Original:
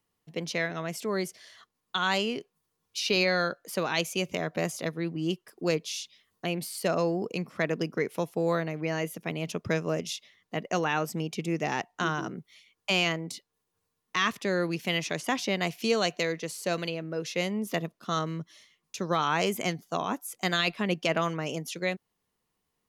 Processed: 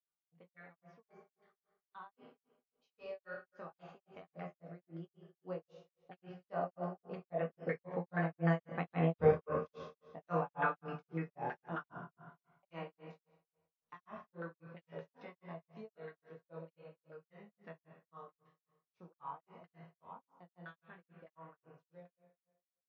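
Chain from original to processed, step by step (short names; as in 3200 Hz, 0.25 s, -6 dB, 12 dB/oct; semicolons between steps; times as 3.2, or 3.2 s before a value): Doppler pass-by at 9.14, 15 m/s, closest 1.5 m; chorus voices 6, 0.14 Hz, delay 23 ms, depth 1.5 ms; LFO low-pass saw down 3.4 Hz 640–1500 Hz; high shelf 2000 Hz +10 dB; reverb RT60 1.2 s, pre-delay 3 ms, DRR 1.5 dB; vocal rider within 5 dB 0.5 s; grains 0.224 s, grains 3.7/s, pitch spread up and down by 0 st; gain +11 dB; WMA 64 kbps 16000 Hz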